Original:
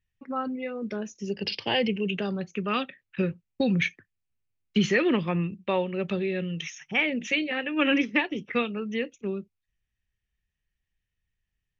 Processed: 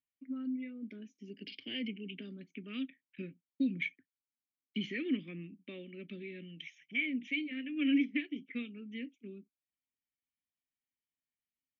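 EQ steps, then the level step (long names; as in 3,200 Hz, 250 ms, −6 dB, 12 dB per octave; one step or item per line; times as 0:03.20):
formant filter i
−1.5 dB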